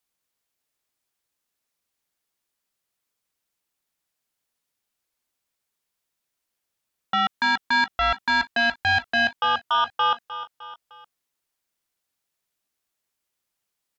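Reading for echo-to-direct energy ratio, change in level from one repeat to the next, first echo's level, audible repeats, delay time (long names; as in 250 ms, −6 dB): −12.5 dB, −6.0 dB, −14.0 dB, 3, 305 ms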